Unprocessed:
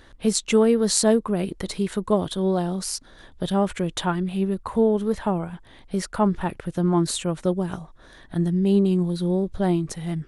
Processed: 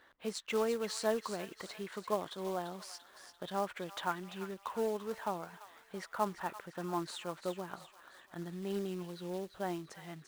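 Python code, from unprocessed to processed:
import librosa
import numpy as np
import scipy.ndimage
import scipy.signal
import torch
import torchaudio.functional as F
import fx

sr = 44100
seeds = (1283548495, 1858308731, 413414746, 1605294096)

y = fx.bandpass_q(x, sr, hz=1300.0, q=0.72)
y = fx.quant_float(y, sr, bits=2)
y = fx.echo_wet_highpass(y, sr, ms=342, feedback_pct=50, hz=1400.0, wet_db=-9)
y = F.gain(torch.from_numpy(y), -7.5).numpy()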